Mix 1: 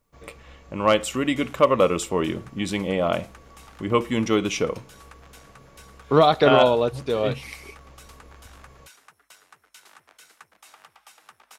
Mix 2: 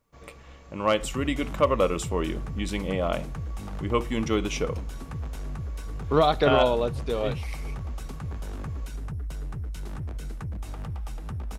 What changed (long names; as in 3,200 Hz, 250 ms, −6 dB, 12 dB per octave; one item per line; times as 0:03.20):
speech −4.5 dB
second sound: remove high-pass filter 1,200 Hz 12 dB per octave